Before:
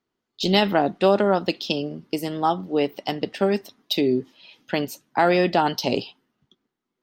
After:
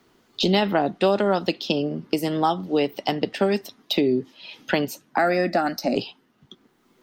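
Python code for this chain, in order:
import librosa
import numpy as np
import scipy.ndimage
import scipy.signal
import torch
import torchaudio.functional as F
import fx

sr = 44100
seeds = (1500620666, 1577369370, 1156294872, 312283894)

y = fx.fixed_phaser(x, sr, hz=640.0, stages=8, at=(5.18, 5.96))
y = fx.band_squash(y, sr, depth_pct=70)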